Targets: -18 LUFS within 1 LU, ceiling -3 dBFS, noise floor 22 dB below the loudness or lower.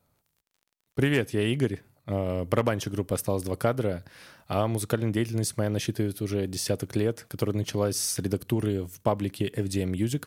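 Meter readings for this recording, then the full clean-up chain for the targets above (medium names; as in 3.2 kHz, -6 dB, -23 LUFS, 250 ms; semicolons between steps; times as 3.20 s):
tick rate 22 per s; loudness -28.5 LUFS; peak level -8.5 dBFS; loudness target -18.0 LUFS
-> de-click; trim +10.5 dB; peak limiter -3 dBFS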